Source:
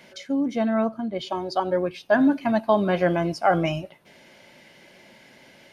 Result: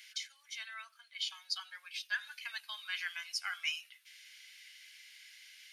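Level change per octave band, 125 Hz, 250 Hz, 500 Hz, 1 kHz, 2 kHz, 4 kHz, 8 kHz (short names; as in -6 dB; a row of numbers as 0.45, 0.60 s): under -40 dB, under -40 dB, under -40 dB, -26.0 dB, -7.0 dB, +0.5 dB, n/a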